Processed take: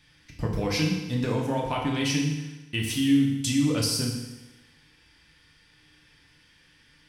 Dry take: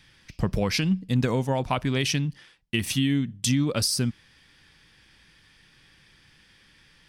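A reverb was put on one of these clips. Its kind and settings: FDN reverb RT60 1.1 s, low-frequency decay 0.9×, high-frequency decay 0.95×, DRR -2 dB; gain -5.5 dB

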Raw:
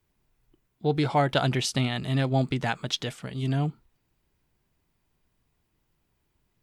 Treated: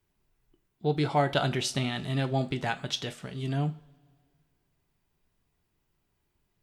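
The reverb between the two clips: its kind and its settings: two-slope reverb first 0.29 s, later 1.8 s, from -22 dB, DRR 8 dB; gain -3 dB

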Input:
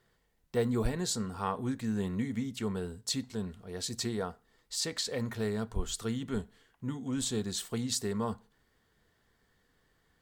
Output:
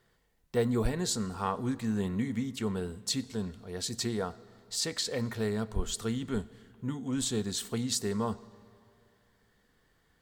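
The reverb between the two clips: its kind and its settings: digital reverb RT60 2.6 s, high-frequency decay 0.75×, pre-delay 50 ms, DRR 20 dB; gain +1.5 dB

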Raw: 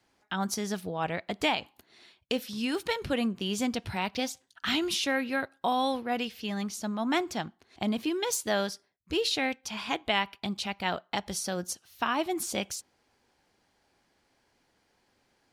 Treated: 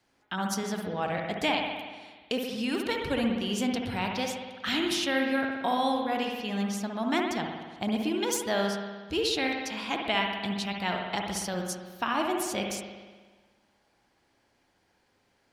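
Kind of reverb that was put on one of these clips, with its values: spring tank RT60 1.4 s, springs 60 ms, chirp 75 ms, DRR 1.5 dB; gain -1 dB

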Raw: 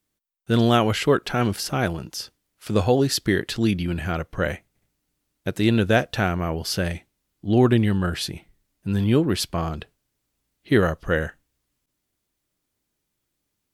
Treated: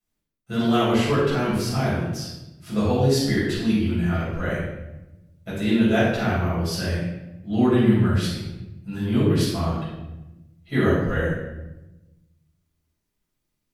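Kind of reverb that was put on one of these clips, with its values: shoebox room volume 420 m³, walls mixed, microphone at 6.7 m; gain -15.5 dB

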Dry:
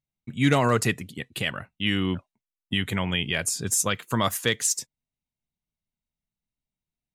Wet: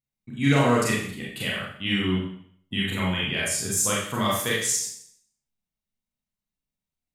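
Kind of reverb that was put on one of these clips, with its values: Schroeder reverb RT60 0.61 s, combs from 29 ms, DRR -5 dB; gain -5.5 dB

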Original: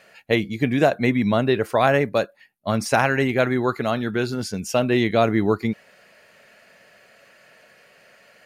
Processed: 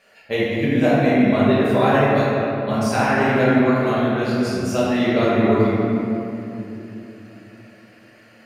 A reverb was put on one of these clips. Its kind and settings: shoebox room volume 140 m³, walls hard, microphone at 1.2 m; gain -7.5 dB

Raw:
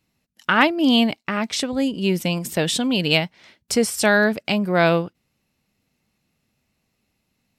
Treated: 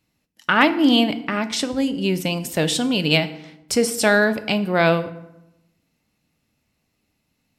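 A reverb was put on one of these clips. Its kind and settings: FDN reverb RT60 0.89 s, low-frequency decay 1.3×, high-frequency decay 0.65×, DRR 10 dB

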